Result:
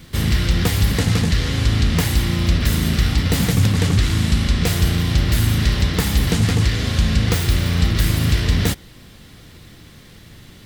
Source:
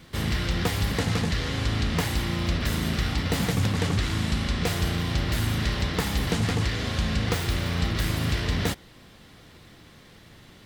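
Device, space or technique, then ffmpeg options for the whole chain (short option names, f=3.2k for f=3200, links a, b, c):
smiley-face EQ: -af "lowshelf=f=160:g=5.5,equalizer=f=810:t=o:w=1.7:g=-4,highshelf=f=7.4k:g=6,volume=5.5dB"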